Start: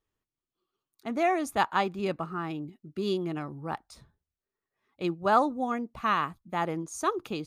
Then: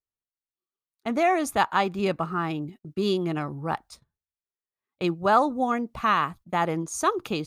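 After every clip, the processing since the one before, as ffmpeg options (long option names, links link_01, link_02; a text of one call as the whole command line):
ffmpeg -i in.wav -filter_complex "[0:a]agate=range=-22dB:threshold=-49dB:ratio=16:detection=peak,equalizer=frequency=300:width=1.5:gain=-2.5,asplit=2[link_01][link_02];[link_02]alimiter=limit=-22dB:level=0:latency=1:release=177,volume=1.5dB[link_03];[link_01][link_03]amix=inputs=2:normalize=0" out.wav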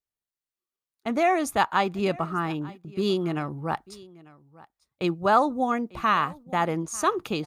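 ffmpeg -i in.wav -af "aecho=1:1:895:0.0794" out.wav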